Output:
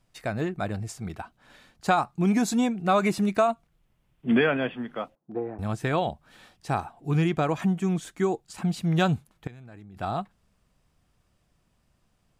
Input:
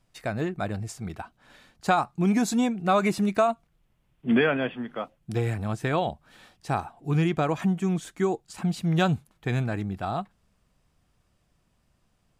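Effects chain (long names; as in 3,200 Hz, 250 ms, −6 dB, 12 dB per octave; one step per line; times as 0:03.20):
0:05.15–0:05.59: Chebyshev band-pass filter 270–910 Hz, order 2
0:09.47–0:09.98: output level in coarse steps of 23 dB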